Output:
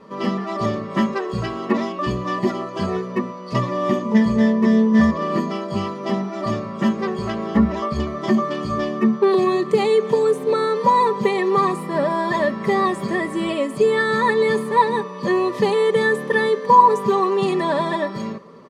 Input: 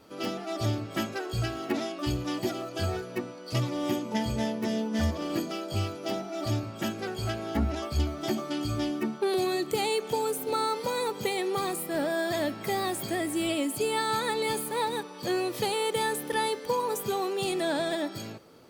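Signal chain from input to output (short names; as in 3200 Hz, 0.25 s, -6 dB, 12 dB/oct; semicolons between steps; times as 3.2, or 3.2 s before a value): LPF 6800 Hz 12 dB/oct; bell 1100 Hz +11 dB 0.26 oct; comb 5.1 ms, depth 62%; small resonant body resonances 200/470/990/1800 Hz, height 14 dB, ringing for 20 ms; gain -1.5 dB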